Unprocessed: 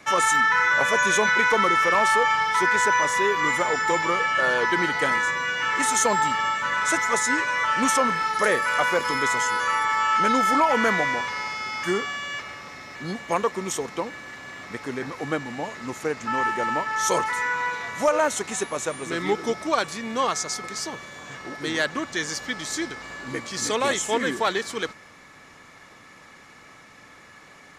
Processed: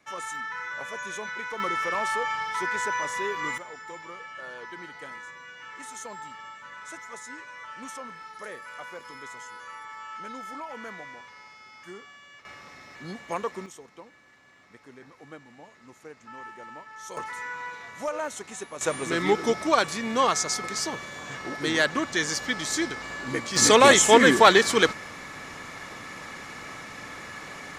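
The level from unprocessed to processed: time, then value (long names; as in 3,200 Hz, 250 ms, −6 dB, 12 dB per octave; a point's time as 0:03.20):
−15 dB
from 0:01.60 −8 dB
from 0:03.58 −18.5 dB
from 0:12.45 −7 dB
from 0:13.66 −18 dB
from 0:17.17 −10 dB
from 0:18.81 +1.5 dB
from 0:23.56 +8.5 dB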